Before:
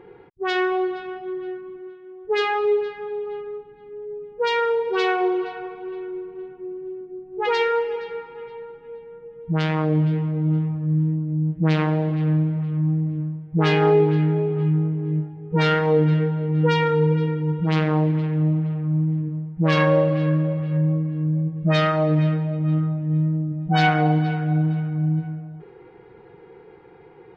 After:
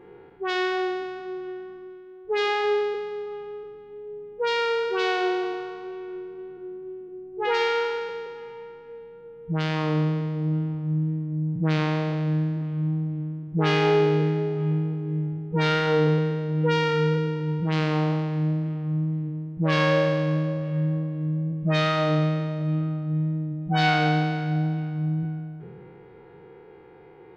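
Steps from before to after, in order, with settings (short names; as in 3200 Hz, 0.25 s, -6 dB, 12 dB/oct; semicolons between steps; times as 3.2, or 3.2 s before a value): spectral trails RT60 1.76 s; gain -4.5 dB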